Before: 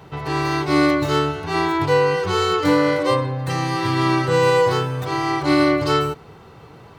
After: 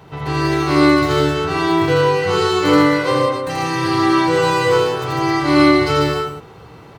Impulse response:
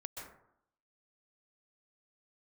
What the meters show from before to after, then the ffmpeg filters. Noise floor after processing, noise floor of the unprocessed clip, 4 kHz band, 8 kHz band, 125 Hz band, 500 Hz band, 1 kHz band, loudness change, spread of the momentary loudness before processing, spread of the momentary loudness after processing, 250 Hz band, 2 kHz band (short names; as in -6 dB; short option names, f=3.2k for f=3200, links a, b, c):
-41 dBFS, -44 dBFS, +4.0 dB, +3.5 dB, +1.5 dB, +3.0 dB, +3.0 dB, +3.5 dB, 7 LU, 7 LU, +5.0 dB, +3.5 dB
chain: -af "aecho=1:1:81.63|148.7|262.4:0.794|0.708|0.447"